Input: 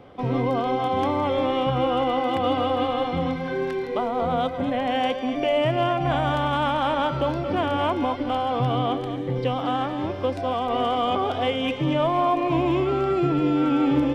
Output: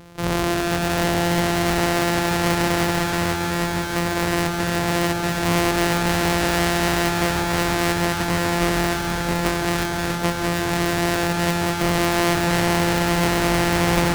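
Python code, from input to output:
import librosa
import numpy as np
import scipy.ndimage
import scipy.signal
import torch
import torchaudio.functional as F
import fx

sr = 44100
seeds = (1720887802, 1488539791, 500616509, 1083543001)

y = np.r_[np.sort(x[:len(x) // 256 * 256].reshape(-1, 256), axis=1).ravel(), x[len(x) // 256 * 256:]]
y = fx.echo_alternate(y, sr, ms=159, hz=800.0, feedback_pct=88, wet_db=-5.0)
y = fx.doppler_dist(y, sr, depth_ms=0.74)
y = y * librosa.db_to_amplitude(3.0)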